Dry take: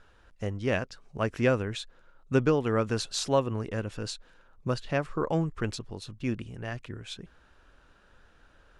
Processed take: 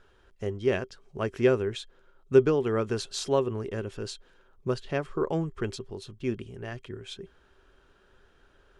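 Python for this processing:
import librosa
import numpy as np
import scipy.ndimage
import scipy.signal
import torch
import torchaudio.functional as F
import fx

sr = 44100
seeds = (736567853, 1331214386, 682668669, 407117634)

y = fx.small_body(x, sr, hz=(390.0, 3200.0), ring_ms=90, db=14)
y = y * librosa.db_to_amplitude(-2.5)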